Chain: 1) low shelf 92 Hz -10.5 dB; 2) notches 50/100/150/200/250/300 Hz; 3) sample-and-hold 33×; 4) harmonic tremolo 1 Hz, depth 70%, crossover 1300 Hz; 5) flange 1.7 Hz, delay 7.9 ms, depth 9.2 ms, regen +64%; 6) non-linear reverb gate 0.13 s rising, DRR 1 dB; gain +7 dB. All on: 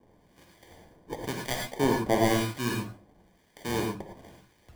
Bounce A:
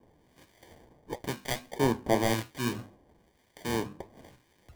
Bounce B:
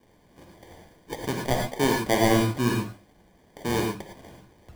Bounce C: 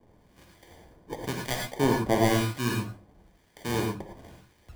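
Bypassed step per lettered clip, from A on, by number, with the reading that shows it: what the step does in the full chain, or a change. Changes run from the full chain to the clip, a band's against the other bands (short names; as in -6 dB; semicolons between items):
6, crest factor change +2.5 dB; 4, loudness change +4.0 LU; 1, 125 Hz band +3.0 dB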